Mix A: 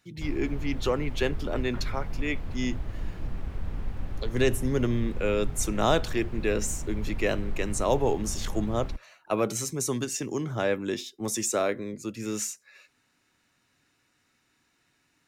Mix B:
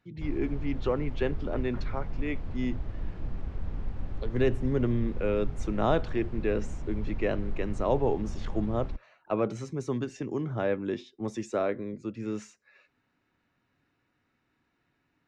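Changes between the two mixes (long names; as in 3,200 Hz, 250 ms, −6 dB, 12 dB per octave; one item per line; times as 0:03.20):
background: add bass and treble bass −1 dB, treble +13 dB
master: add head-to-tape spacing loss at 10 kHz 31 dB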